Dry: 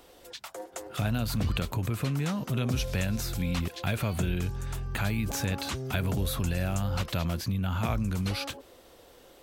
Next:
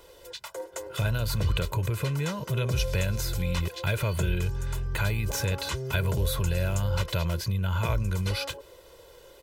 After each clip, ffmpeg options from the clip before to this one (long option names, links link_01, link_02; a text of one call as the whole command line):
ffmpeg -i in.wav -af "aecho=1:1:2:0.78" out.wav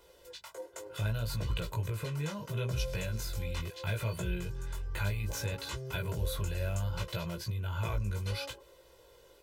ffmpeg -i in.wav -af "flanger=delay=17:depth=2.8:speed=0.69,volume=-4.5dB" out.wav